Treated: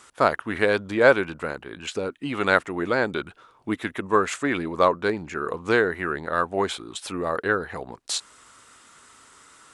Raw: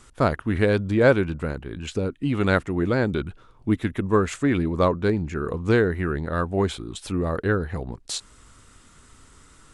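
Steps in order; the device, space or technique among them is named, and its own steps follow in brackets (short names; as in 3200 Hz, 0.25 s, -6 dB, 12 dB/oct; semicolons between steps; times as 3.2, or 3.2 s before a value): filter by subtraction (in parallel: LPF 930 Hz 12 dB/oct + phase invert); on the sum: gain +2.5 dB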